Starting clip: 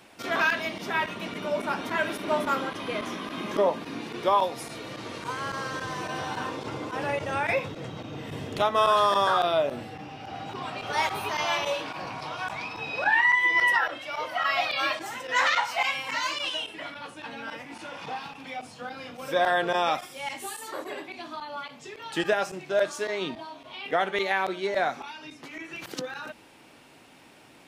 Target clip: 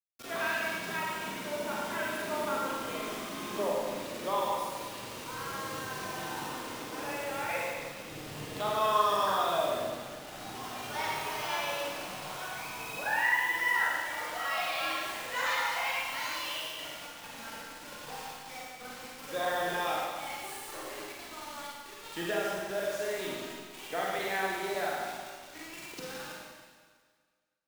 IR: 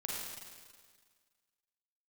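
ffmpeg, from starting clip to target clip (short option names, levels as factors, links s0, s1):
-filter_complex "[0:a]asettb=1/sr,asplit=3[s0][s1][s2];[s0]atrim=end=6.394[s3];[s1]atrim=start=6.39:end=8.07,asetpts=PTS-STARTPTS,afade=t=in:d=0.004:c=qsin,afade=t=out:st=1.676:d=0.004:c=qsin,highpass=f=250:p=1[s4];[s2]atrim=start=8.066[s5];[s3][s4]acrossfade=d=0.004:c1=hsin:c2=qsin[s6];[s6][s5]acrossfade=d=0.004:c1=qsin:c2=hsin,acrusher=bits=5:mix=0:aa=0.000001[s7];[1:a]atrim=start_sample=2205[s8];[s7][s8]afir=irnorm=-1:irlink=0,volume=0.422"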